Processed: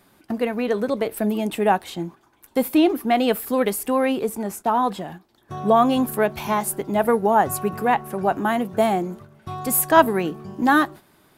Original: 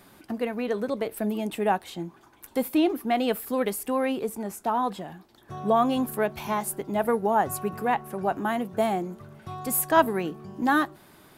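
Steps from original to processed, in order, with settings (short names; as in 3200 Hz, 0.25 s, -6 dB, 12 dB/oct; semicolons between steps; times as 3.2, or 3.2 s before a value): gate -42 dBFS, range -9 dB; gain +5.5 dB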